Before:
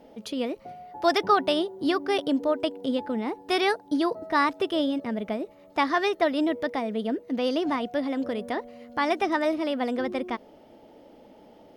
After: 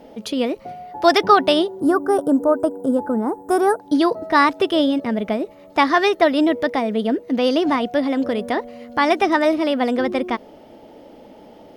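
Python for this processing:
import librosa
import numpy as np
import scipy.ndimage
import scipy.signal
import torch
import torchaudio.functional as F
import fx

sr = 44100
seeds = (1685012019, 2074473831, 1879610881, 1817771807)

y = fx.curve_eq(x, sr, hz=(1500.0, 2300.0, 4500.0, 7700.0), db=(0, -27, -22, 4), at=(1.8, 3.8))
y = y * 10.0 ** (8.0 / 20.0)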